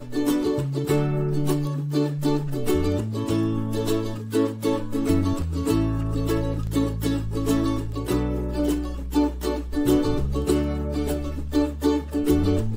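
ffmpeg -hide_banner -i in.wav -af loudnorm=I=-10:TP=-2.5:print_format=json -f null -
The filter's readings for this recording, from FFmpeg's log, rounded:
"input_i" : "-24.4",
"input_tp" : "-7.9",
"input_lra" : "1.2",
"input_thresh" : "-34.4",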